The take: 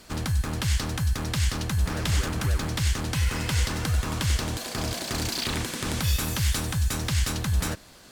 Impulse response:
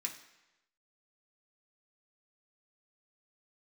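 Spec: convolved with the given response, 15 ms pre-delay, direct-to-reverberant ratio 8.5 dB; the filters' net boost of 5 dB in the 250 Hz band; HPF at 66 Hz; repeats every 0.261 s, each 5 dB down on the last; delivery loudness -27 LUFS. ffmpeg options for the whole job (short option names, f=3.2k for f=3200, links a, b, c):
-filter_complex "[0:a]highpass=66,equalizer=f=250:t=o:g=7,aecho=1:1:261|522|783|1044|1305|1566|1827:0.562|0.315|0.176|0.0988|0.0553|0.031|0.0173,asplit=2[a][b];[1:a]atrim=start_sample=2205,adelay=15[c];[b][c]afir=irnorm=-1:irlink=0,volume=-8dB[d];[a][d]amix=inputs=2:normalize=0,volume=-2dB"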